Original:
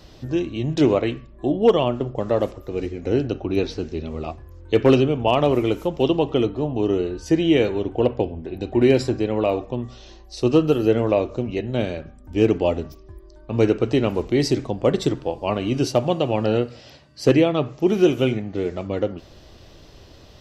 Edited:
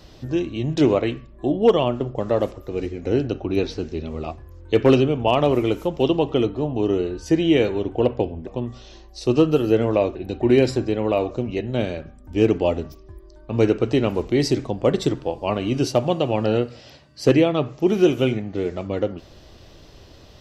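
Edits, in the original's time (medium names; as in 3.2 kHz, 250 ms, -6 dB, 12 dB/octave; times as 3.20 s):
8.47–9.63 s: move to 11.31 s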